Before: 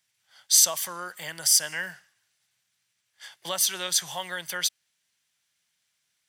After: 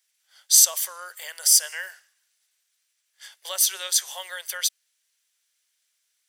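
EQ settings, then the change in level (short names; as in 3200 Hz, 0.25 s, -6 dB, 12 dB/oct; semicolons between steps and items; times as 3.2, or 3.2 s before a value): rippled Chebyshev high-pass 390 Hz, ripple 3 dB; high shelf 3700 Hz +12 dB; -3.5 dB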